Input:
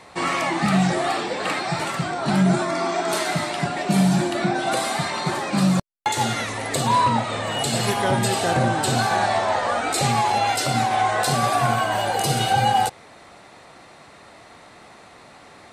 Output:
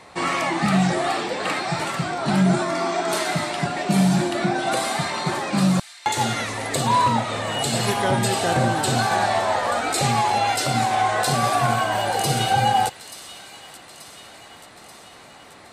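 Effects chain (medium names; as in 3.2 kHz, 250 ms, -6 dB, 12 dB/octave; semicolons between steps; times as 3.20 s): feedback echo behind a high-pass 883 ms, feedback 60%, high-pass 2.6 kHz, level -12.5 dB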